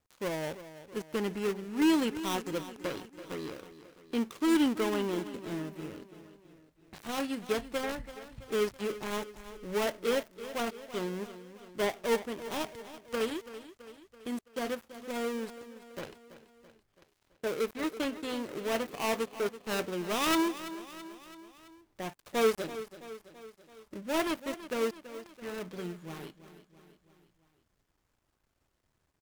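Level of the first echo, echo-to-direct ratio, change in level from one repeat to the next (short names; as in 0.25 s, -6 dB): -14.0 dB, -12.5 dB, -5.0 dB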